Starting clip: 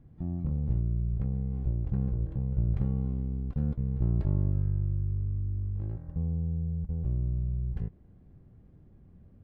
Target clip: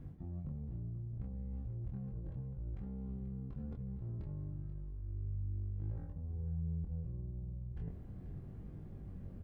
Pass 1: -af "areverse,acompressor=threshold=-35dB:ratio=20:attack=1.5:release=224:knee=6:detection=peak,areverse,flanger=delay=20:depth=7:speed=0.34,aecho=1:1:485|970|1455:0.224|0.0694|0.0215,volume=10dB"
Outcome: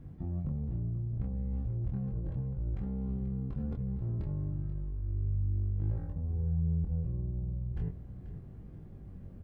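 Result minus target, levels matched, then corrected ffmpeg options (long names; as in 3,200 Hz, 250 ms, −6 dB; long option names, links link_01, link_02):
downward compressor: peak gain reduction −8 dB
-af "areverse,acompressor=threshold=-43.5dB:ratio=20:attack=1.5:release=224:knee=6:detection=peak,areverse,flanger=delay=20:depth=7:speed=0.34,aecho=1:1:485|970|1455:0.224|0.0694|0.0215,volume=10dB"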